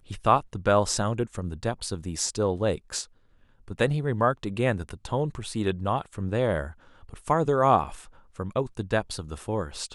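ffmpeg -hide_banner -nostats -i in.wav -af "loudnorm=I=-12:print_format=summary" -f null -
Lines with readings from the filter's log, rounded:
Input Integrated:    -27.0 LUFS
Input True Peak:      -5.7 dBTP
Input LRA:             1.7 LU
Input Threshold:     -37.6 LUFS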